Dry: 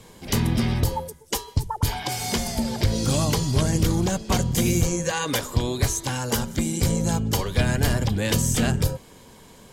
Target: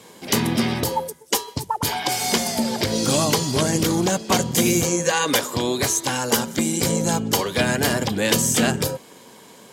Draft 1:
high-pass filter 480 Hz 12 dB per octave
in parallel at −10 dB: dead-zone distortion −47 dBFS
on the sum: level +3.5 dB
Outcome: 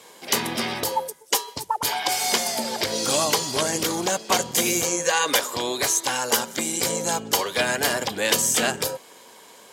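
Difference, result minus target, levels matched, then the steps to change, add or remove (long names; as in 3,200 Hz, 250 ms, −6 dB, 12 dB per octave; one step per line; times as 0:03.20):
250 Hz band −7.5 dB
change: high-pass filter 220 Hz 12 dB per octave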